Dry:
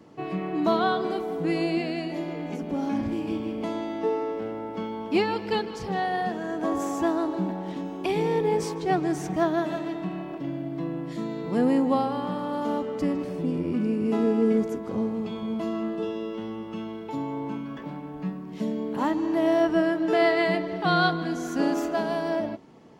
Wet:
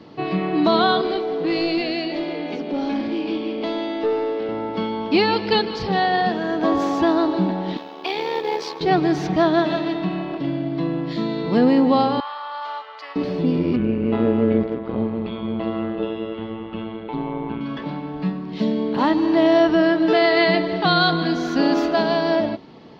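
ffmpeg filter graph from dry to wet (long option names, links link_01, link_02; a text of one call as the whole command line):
ffmpeg -i in.wav -filter_complex "[0:a]asettb=1/sr,asplit=3[link_01][link_02][link_03];[link_01]atrim=end=1.014[link_04];[link_02]atrim=start=1.01:end=4.49,asetpts=PTS-STARTPTS,afade=type=in:duration=0.004:curve=qsin,afade=type=out:start_time=3.476:duration=0.004:curve=qsin,highpass=280,equalizer=frequency=1100:width_type=o:width=2.1:gain=-11,asplit=2[link_05][link_06];[link_06]highpass=frequency=720:poles=1,volume=16dB,asoftclip=type=tanh:threshold=-20dB[link_07];[link_05][link_07]amix=inputs=2:normalize=0,lowpass=frequency=1500:poles=1,volume=-6dB[link_08];[link_03]atrim=start=4.486[link_09];[link_04][link_08]acrossfade=duration=0.004:curve1=hsin:curve2=qsin[link_10];[link_10][link_09]acrossfade=duration=0.004:curve1=qsin:curve2=hsin,asettb=1/sr,asplit=3[link_11][link_12][link_13];[link_11]atrim=end=7.774[link_14];[link_12]atrim=start=7.77:end=8.81,asetpts=PTS-STARTPTS,afade=type=in:duration=0.004:curve=qsin,afade=type=out:start_time=1.036:duration=0.004:curve=qsin,highpass=560,tremolo=f=75:d=0.621,acrusher=bits=5:mode=log:mix=0:aa=0.000001[link_15];[link_13]atrim=start=8.806[link_16];[link_14][link_15]acrossfade=duration=0.004:curve1=hsin:curve2=qsin[link_17];[link_17][link_16]acrossfade=duration=0.004:curve1=qsin:curve2=hsin,asettb=1/sr,asplit=3[link_18][link_19][link_20];[link_18]atrim=end=12.204[link_21];[link_19]atrim=start=12.2:end=13.16,asetpts=PTS-STARTPTS,afade=type=in:duration=0.004:curve=qsin,afade=type=out:start_time=0.956:duration=0.004:curve=qsin,highpass=frequency=920:width=0.5412,highpass=frequency=920:width=1.3066,highshelf=frequency=3300:gain=-11[link_22];[link_20]atrim=start=13.156[link_23];[link_21][link_22]acrossfade=duration=0.004:curve1=hsin:curve2=qsin[link_24];[link_24][link_23]acrossfade=duration=0.004:curve1=qsin:curve2=hsin,asettb=1/sr,asplit=3[link_25][link_26][link_27];[link_25]atrim=end=13.764[link_28];[link_26]atrim=start=13.76:end=17.61,asetpts=PTS-STARTPTS,afade=type=in:duration=0.004:curve=qsin,afade=type=out:start_time=3.846:duration=0.004:curve=qsin,tremolo=f=120:d=0.75,lowpass=frequency=3200:width=0.5412,lowpass=frequency=3200:width=1.3066[link_29];[link_27]atrim=start=17.606[link_30];[link_28][link_29]acrossfade=duration=0.004:curve1=hsin:curve2=qsin[link_31];[link_31][link_30]acrossfade=duration=0.004:curve1=qsin:curve2=hsin,highshelf=frequency=6100:width_type=q:width=3:gain=-13.5,alimiter=level_in=14.5dB:limit=-1dB:release=50:level=0:latency=1,volume=-7dB" out.wav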